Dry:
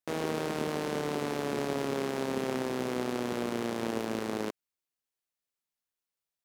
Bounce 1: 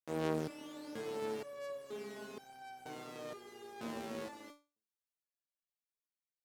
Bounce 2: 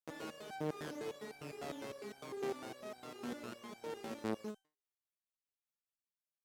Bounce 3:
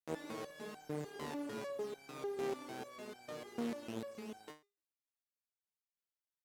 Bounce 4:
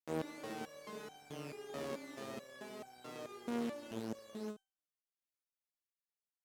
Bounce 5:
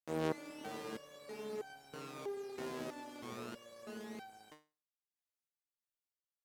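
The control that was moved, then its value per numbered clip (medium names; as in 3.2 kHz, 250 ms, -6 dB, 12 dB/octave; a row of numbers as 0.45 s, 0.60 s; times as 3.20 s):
resonator arpeggio, rate: 2.1 Hz, 9.9 Hz, 6.7 Hz, 4.6 Hz, 3.1 Hz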